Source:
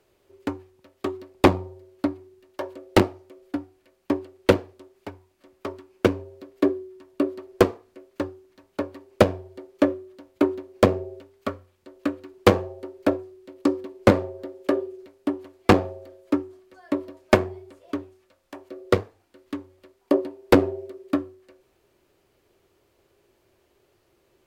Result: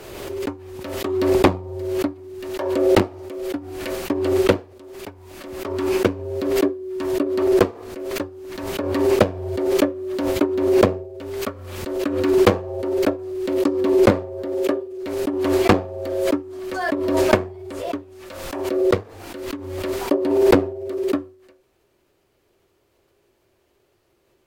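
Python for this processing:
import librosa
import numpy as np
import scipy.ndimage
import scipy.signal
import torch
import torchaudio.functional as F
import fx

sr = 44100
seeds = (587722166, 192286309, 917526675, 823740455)

y = fx.pre_swell(x, sr, db_per_s=36.0)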